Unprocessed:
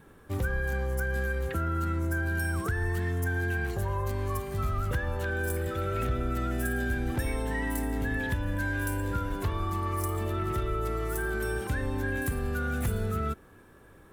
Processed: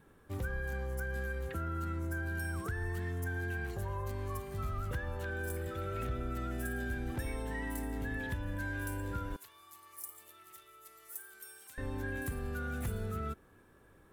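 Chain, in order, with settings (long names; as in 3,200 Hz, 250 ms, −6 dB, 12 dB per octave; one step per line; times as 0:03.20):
0:09.36–0:11.78: first difference
level −7.5 dB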